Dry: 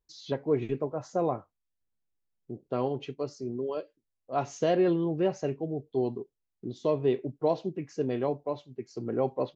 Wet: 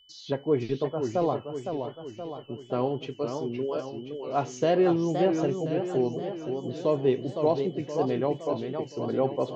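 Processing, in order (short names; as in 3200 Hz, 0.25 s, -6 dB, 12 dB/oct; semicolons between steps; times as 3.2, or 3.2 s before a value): whine 3000 Hz -59 dBFS; warbling echo 0.517 s, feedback 55%, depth 220 cents, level -6.5 dB; gain +2 dB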